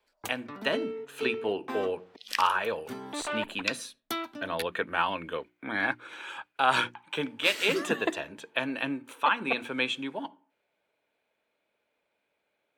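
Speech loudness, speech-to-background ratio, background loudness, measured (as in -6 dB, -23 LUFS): -30.5 LUFS, 6.5 dB, -37.0 LUFS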